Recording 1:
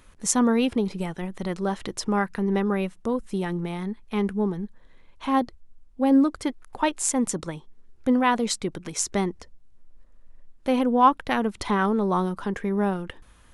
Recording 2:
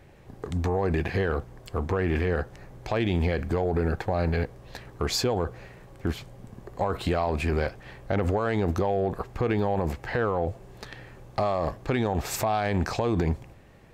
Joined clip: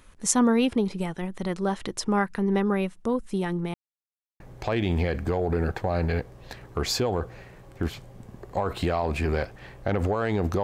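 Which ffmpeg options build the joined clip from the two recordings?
ffmpeg -i cue0.wav -i cue1.wav -filter_complex "[0:a]apad=whole_dur=10.63,atrim=end=10.63,asplit=2[link_01][link_02];[link_01]atrim=end=3.74,asetpts=PTS-STARTPTS,afade=type=out:start_time=3.736:duration=0.004:curve=hsin[link_03];[link_02]atrim=start=3.74:end=4.4,asetpts=PTS-STARTPTS,volume=0[link_04];[1:a]atrim=start=2.64:end=8.87,asetpts=PTS-STARTPTS,afade=type=in:duration=0.004:curve=hsin[link_05];[link_03][link_04][link_05]concat=n=3:v=0:a=1" out.wav

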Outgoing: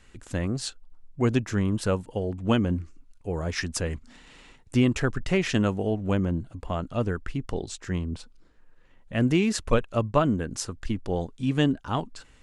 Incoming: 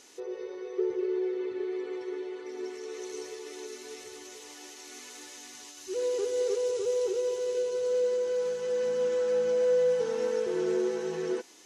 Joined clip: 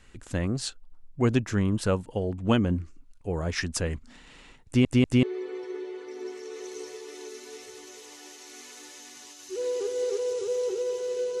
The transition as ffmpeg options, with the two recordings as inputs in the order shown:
ffmpeg -i cue0.wav -i cue1.wav -filter_complex "[0:a]apad=whole_dur=11.4,atrim=end=11.4,asplit=3[link_01][link_02][link_03];[link_01]atrim=end=4.852[link_04];[link_02]atrim=start=4.658:end=4.852[link_05];[link_03]atrim=start=4.658:end=4.852[link_06];[1:a]atrim=start=1.608:end=7.78[link_07];[link_04][link_05]acrossfade=duration=0.004:curve1=hsin:curve2=hsin[link_08];[link_08][link_06]acrossfade=duration=0.004:curve1=hsin:curve2=hsin[link_09];[link_09][link_07]acrossfade=duration=0.004:curve1=hsin:curve2=hsin" out.wav

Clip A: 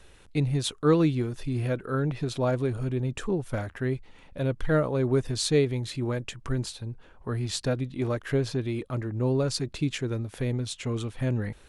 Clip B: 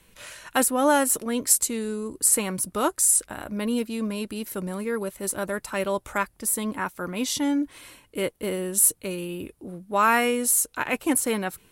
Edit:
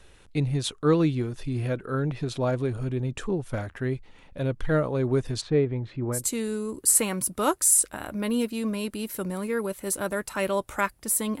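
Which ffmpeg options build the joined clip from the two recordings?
ffmpeg -i cue0.wav -i cue1.wav -filter_complex "[0:a]asplit=3[link_01][link_02][link_03];[link_01]afade=type=out:start_time=5.4:duration=0.02[link_04];[link_02]lowpass=1700,afade=type=in:start_time=5.4:duration=0.02,afade=type=out:start_time=6.32:duration=0.02[link_05];[link_03]afade=type=in:start_time=6.32:duration=0.02[link_06];[link_04][link_05][link_06]amix=inputs=3:normalize=0,apad=whole_dur=11.4,atrim=end=11.4,atrim=end=6.32,asetpts=PTS-STARTPTS[link_07];[1:a]atrim=start=1.49:end=6.77,asetpts=PTS-STARTPTS[link_08];[link_07][link_08]acrossfade=duration=0.2:curve1=tri:curve2=tri" out.wav

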